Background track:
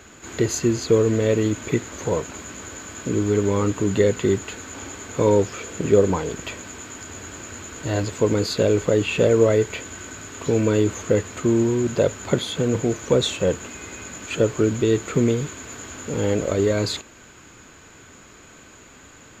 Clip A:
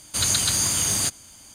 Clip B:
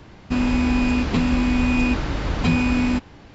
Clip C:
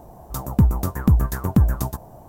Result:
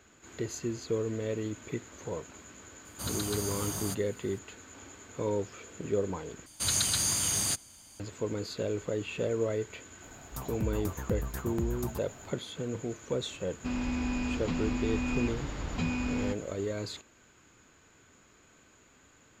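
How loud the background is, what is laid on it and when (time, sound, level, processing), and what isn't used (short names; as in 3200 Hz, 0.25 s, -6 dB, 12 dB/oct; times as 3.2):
background track -14 dB
2.85 add A -7 dB + band shelf 4200 Hz -9 dB 2.9 oct
6.46 replace with A -6.5 dB
10.02 add C -10.5 dB + compressor, threshold -19 dBFS
13.34 add B -12.5 dB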